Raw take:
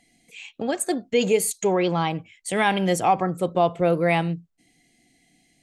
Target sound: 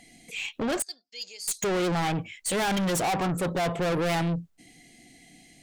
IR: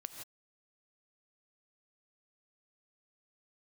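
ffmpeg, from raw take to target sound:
-filter_complex "[0:a]asettb=1/sr,asplit=3[a][b][c];[a]atrim=end=0.824[d];[b]atrim=start=0.82:end=1.48,asetpts=PTS-STARTPTS,afade=t=in:d=0.004:c=qsin,afade=t=out:st=0.656:d=0.004:c=qsin,bandpass=f=4.9k:t=q:w=11:csg=0[e];[c]atrim=start=1.476[f];[d][e]acrossfade=d=0.004:c1=hsin:c2=qsin[g];[g][f]acrossfade=d=0.004:c1=qsin:c2=hsin,aeval=exprs='(tanh(44.7*val(0)+0.1)-tanh(0.1))/44.7':c=same,volume=8.5dB"

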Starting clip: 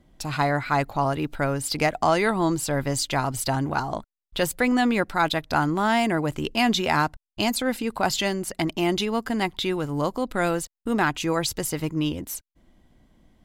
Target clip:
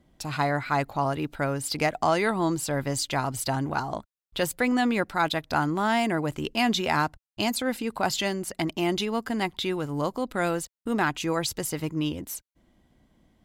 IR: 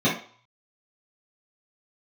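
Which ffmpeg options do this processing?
-af "highpass=f=47:p=1,volume=-2.5dB"

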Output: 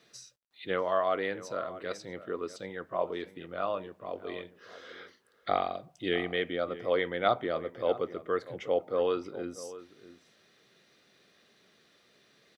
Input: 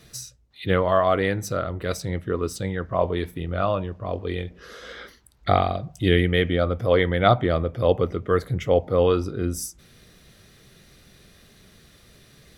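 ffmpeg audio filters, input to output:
-filter_complex "[0:a]highpass=300,lowpass=5.3k,asplit=2[a][b];[b]adelay=641.4,volume=-15dB,highshelf=f=4k:g=-14.4[c];[a][c]amix=inputs=2:normalize=0,acrusher=bits=11:mix=0:aa=0.000001,volume=-8dB"

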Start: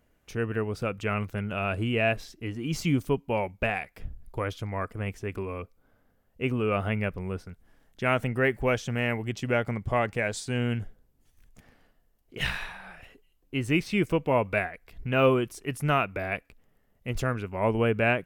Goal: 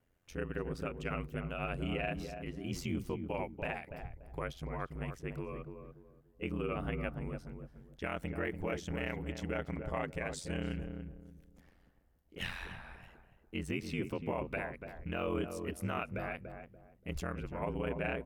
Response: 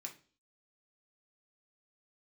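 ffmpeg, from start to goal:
-filter_complex "[0:a]alimiter=limit=-18.5dB:level=0:latency=1:release=131,aeval=exprs='val(0)*sin(2*PI*44*n/s)':c=same,asplit=2[a][b];[b]adelay=289,lowpass=f=850:p=1,volume=-5.5dB,asplit=2[c][d];[d]adelay=289,lowpass=f=850:p=1,volume=0.31,asplit=2[e][f];[f]adelay=289,lowpass=f=850:p=1,volume=0.31,asplit=2[g][h];[h]adelay=289,lowpass=f=850:p=1,volume=0.31[i];[a][c][e][g][i]amix=inputs=5:normalize=0,volume=-5.5dB"

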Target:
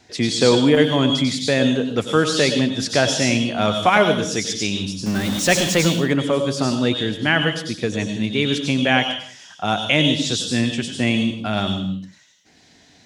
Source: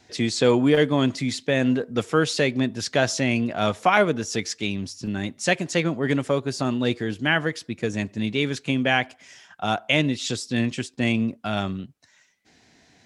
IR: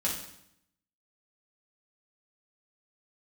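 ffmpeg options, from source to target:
-filter_complex "[0:a]asettb=1/sr,asplit=3[a][b][c];[a]atrim=end=5.064[d];[b]atrim=start=5.06:end=5.86,asetpts=PTS-STARTPTS,afade=t=in:d=0.004:c=qsin,afade=t=out:st=0.796:d=0.004:c=qsin,aeval=exprs='val(0)+0.5*0.0473*sgn(val(0))':c=same[e];[c]atrim=start=5.856[f];[d][e]acrossfade=d=0.004:c1=hsin:c2=qsin[g];[g][f]acrossfade=d=0.004:c1=qsin:c2=hsin,asplit=2[h][i];[i]highshelf=f=2.7k:t=q:w=3:g=6[j];[1:a]atrim=start_sample=2205,afade=t=out:st=0.28:d=0.01,atrim=end_sample=12789,adelay=93[k];[j][k]afir=irnorm=-1:irlink=0,volume=-13dB[l];[h][l]amix=inputs=2:normalize=0,volume=3dB"

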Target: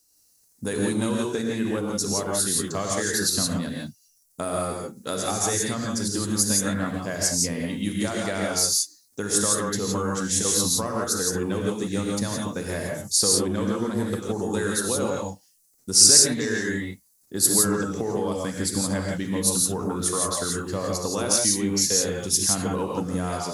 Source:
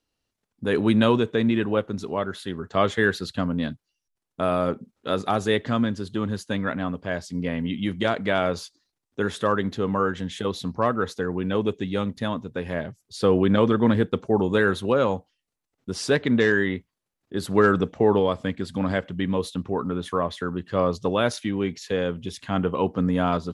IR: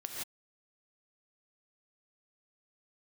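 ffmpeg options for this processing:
-filter_complex "[0:a]acompressor=threshold=-25dB:ratio=6,aexciter=amount=14:drive=5.3:freq=4.9k[a];[1:a]atrim=start_sample=2205[b];[a][b]afir=irnorm=-1:irlink=0,volume=2.5dB"

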